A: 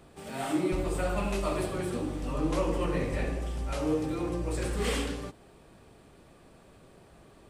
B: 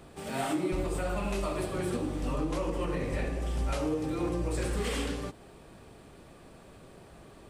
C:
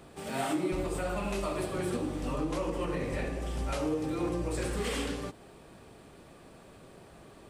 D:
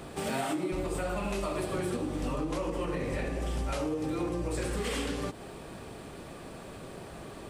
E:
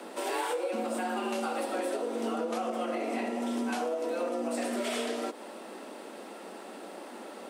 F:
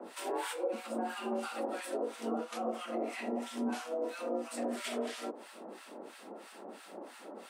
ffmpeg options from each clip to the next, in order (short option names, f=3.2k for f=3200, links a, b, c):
-af "alimiter=level_in=1.5dB:limit=-24dB:level=0:latency=1:release=320,volume=-1.5dB,volume=3.5dB"
-af "lowshelf=f=76:g=-6"
-af "acompressor=threshold=-38dB:ratio=6,volume=8.5dB"
-af "afreqshift=180"
-filter_complex "[0:a]acrossover=split=1100[a][b];[a]aeval=exprs='val(0)*(1-1/2+1/2*cos(2*PI*3*n/s))':c=same[c];[b]aeval=exprs='val(0)*(1-1/2-1/2*cos(2*PI*3*n/s))':c=same[d];[c][d]amix=inputs=2:normalize=0"